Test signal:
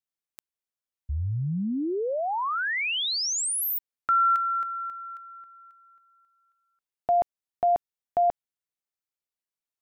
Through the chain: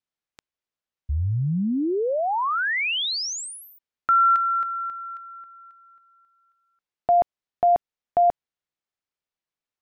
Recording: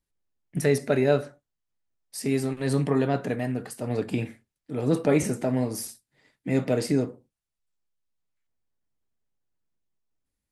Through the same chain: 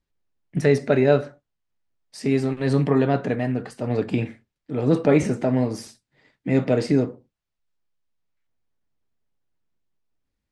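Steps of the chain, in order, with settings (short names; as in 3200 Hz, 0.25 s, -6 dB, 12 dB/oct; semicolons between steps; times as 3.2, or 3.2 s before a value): air absorption 100 m; gain +4.5 dB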